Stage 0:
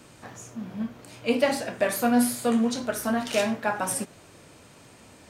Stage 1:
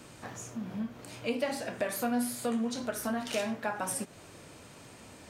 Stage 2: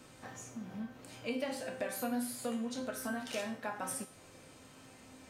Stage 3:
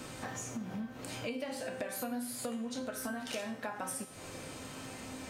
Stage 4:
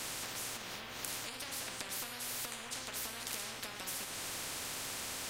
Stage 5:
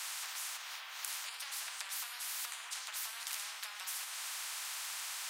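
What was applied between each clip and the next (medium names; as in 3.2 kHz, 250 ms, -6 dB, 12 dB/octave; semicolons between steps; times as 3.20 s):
compression 2:1, threshold -35 dBFS, peak gain reduction 10.5 dB
feedback comb 260 Hz, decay 0.52 s, harmonics all, mix 80%; trim +6.5 dB
compression 4:1, threshold -49 dBFS, peak gain reduction 14.5 dB; trim +11 dB
tone controls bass -2 dB, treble -7 dB; spectrum-flattening compressor 10:1; trim +7 dB
high-pass 880 Hz 24 dB/octave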